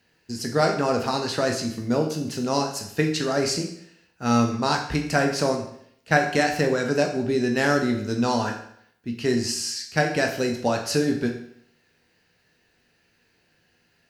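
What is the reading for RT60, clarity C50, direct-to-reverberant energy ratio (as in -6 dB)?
0.65 s, 7.0 dB, 2.0 dB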